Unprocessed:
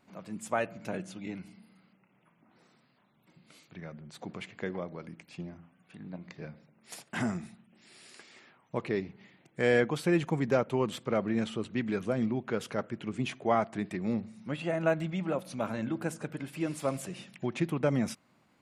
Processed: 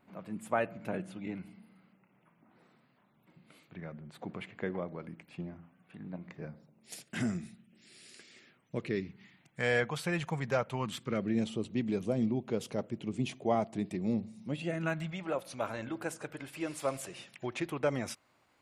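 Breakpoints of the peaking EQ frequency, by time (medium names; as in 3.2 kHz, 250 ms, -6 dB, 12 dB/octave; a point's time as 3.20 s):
peaking EQ -13 dB 1.1 oct
6.24 s 6 kHz
7.00 s 930 Hz
8.83 s 930 Hz
9.74 s 300 Hz
10.69 s 300 Hz
11.46 s 1.5 kHz
14.54 s 1.5 kHz
15.26 s 190 Hz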